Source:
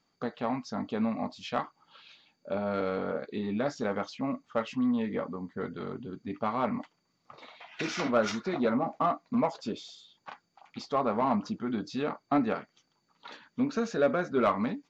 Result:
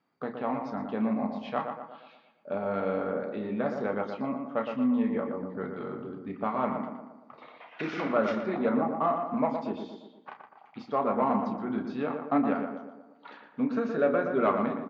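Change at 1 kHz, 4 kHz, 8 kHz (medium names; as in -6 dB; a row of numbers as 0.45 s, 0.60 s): +1.5 dB, -8.0 dB, no reading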